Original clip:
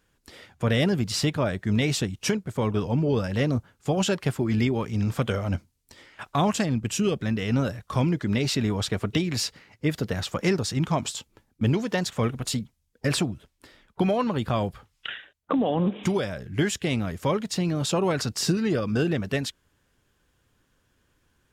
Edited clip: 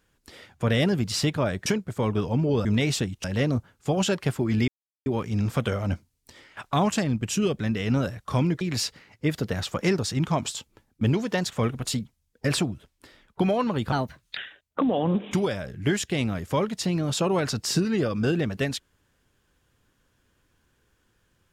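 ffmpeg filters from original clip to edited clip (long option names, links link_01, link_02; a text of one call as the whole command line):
ffmpeg -i in.wav -filter_complex "[0:a]asplit=8[link_01][link_02][link_03][link_04][link_05][link_06][link_07][link_08];[link_01]atrim=end=1.662[link_09];[link_02]atrim=start=2.248:end=3.242[link_10];[link_03]atrim=start=1.658:end=2.252[link_11];[link_04]atrim=start=3.238:end=4.68,asetpts=PTS-STARTPTS,afade=type=out:start_time=1.438:duration=0.004:curve=hsin,apad=pad_dur=0.38[link_12];[link_05]atrim=start=4.68:end=8.232,asetpts=PTS-STARTPTS,afade=type=in:duration=0.004:curve=hsin[link_13];[link_06]atrim=start=9.208:end=14.524[link_14];[link_07]atrim=start=14.52:end=15.09,asetpts=PTS-STARTPTS,asetrate=56007,aresample=44100[link_15];[link_08]atrim=start=15.086[link_16];[link_09][link_10]acrossfade=duration=0.004:curve1=hsin:curve2=hsin[link_17];[link_17][link_11]acrossfade=duration=0.004:curve1=hsin:curve2=hsin[link_18];[link_12][link_13]concat=n=2:v=0:a=1[link_19];[link_18][link_19]acrossfade=duration=0.004:curve1=hsin:curve2=hsin[link_20];[link_20][link_14]acrossfade=duration=0.004:curve1=hsin:curve2=hsin[link_21];[link_21][link_15]acrossfade=duration=0.004:curve1=hsin:curve2=hsin[link_22];[link_22][link_16]acrossfade=duration=0.004:curve1=hsin:curve2=hsin" out.wav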